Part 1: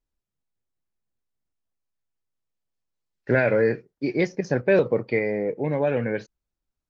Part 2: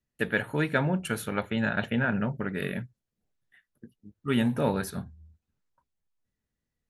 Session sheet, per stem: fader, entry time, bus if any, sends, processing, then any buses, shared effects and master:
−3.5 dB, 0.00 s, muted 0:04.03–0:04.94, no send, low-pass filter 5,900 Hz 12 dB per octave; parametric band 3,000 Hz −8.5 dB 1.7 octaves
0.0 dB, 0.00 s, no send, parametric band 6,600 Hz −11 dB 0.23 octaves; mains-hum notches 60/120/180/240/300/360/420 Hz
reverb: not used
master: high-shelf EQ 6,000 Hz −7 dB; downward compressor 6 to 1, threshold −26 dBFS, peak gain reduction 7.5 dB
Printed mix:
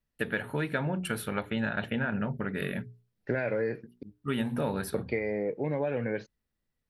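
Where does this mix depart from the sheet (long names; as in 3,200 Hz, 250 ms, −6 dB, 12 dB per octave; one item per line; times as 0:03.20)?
stem 1: missing parametric band 3,000 Hz −8.5 dB 1.7 octaves
master: missing high-shelf EQ 6,000 Hz −7 dB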